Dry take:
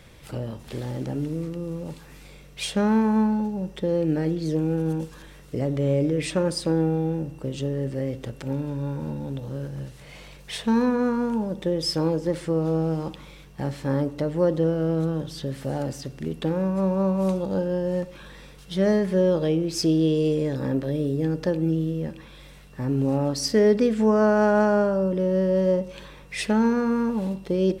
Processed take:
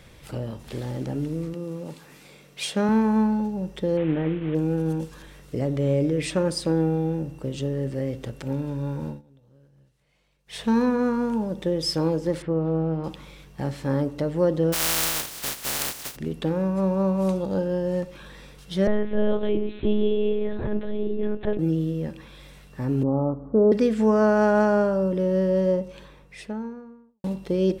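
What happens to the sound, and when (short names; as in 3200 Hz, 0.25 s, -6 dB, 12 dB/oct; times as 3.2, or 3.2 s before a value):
1.54–2.89 HPF 160 Hz
3.97–4.55 CVSD 16 kbps
9.06–10.62 dip -24 dB, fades 0.16 s
12.42–13.04 air absorption 400 m
14.72–16.15 spectral contrast lowered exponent 0.11
18.87–21.59 monotone LPC vocoder at 8 kHz 210 Hz
23.03–23.72 steep low-pass 1300 Hz 72 dB/oct
25.38–27.24 studio fade out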